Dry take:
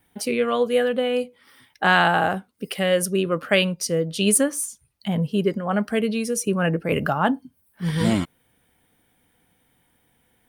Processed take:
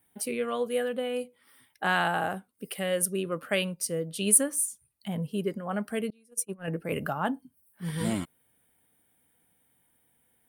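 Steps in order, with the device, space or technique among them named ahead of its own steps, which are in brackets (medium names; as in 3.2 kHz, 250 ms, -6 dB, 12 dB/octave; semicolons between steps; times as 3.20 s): budget condenser microphone (high-pass 68 Hz 6 dB/octave; resonant high shelf 7.4 kHz +7 dB, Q 1.5); 6.10–6.68 s: gate -19 dBFS, range -28 dB; trim -8.5 dB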